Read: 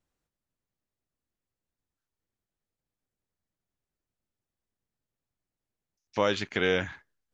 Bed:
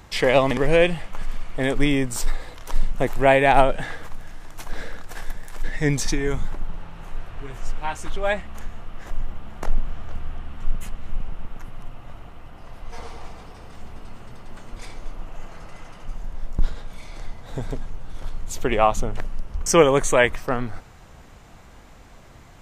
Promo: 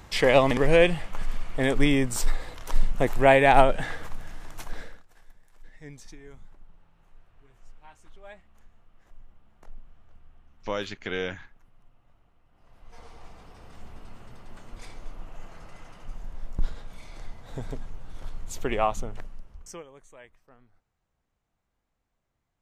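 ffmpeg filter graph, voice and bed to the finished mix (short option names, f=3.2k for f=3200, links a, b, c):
-filter_complex "[0:a]adelay=4500,volume=-5dB[a];[1:a]volume=16dB,afade=t=out:st=4.51:d=0.54:silence=0.0794328,afade=t=in:st=12.48:d=1.29:silence=0.133352,afade=t=out:st=18.73:d=1.1:silence=0.0446684[b];[a][b]amix=inputs=2:normalize=0"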